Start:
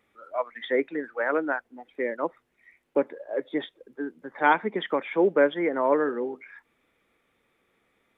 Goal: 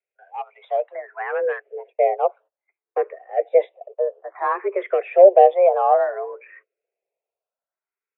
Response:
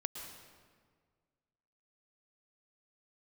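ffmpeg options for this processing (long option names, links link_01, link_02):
-filter_complex "[0:a]agate=range=-24dB:threshold=-51dB:ratio=16:detection=peak,acrossover=split=490[link_01][link_02];[link_01]dynaudnorm=framelen=120:gausssize=17:maxgain=14.5dB[link_03];[link_02]asoftclip=type=tanh:threshold=-26.5dB[link_04];[link_03][link_04]amix=inputs=2:normalize=0,highpass=frequency=190:width_type=q:width=0.5412,highpass=frequency=190:width_type=q:width=1.307,lowpass=frequency=2600:width_type=q:width=0.5176,lowpass=frequency=2600:width_type=q:width=0.7071,lowpass=frequency=2600:width_type=q:width=1.932,afreqshift=190,asplit=2[link_05][link_06];[link_06]afreqshift=0.59[link_07];[link_05][link_07]amix=inputs=2:normalize=1,volume=2dB"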